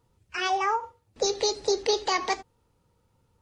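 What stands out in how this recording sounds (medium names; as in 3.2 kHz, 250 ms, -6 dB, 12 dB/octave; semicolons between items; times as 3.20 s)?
noise floor -70 dBFS; spectral tilt -0.5 dB/octave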